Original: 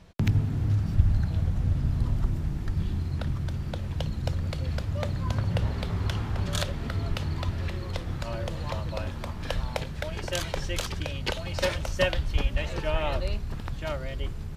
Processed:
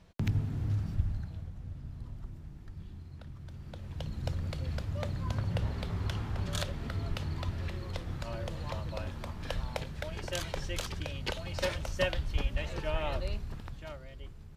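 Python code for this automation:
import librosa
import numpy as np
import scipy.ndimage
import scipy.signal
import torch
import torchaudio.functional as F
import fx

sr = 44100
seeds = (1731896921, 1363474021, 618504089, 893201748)

y = fx.gain(x, sr, db=fx.line((0.81, -6.5), (1.53, -17.0), (3.32, -17.0), (4.25, -5.5), (13.42, -5.5), (14.04, -14.0)))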